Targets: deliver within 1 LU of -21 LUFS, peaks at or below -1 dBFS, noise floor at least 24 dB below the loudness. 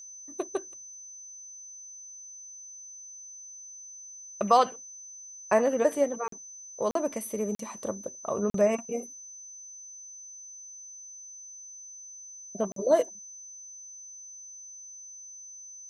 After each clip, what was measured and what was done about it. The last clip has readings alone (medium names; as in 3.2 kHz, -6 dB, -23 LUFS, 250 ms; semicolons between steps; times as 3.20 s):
dropouts 5; longest dropout 43 ms; steady tone 6.1 kHz; tone level -43 dBFS; loudness -29.0 LUFS; peak level -10.0 dBFS; loudness target -21.0 LUFS
-> interpolate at 6.28/6.91/7.55/8.50/12.72 s, 43 ms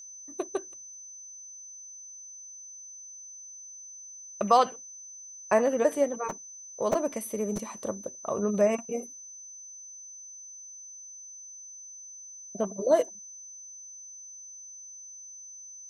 dropouts 0; steady tone 6.1 kHz; tone level -43 dBFS
-> band-stop 6.1 kHz, Q 30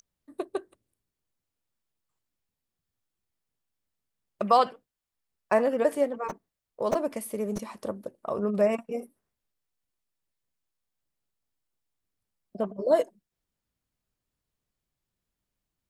steady tone not found; loudness -28.5 LUFS; peak level -10.0 dBFS; loudness target -21.0 LUFS
-> trim +7.5 dB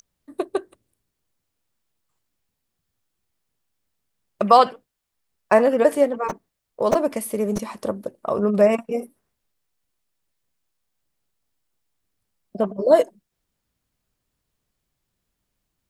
loudness -21.0 LUFS; peak level -2.5 dBFS; noise floor -79 dBFS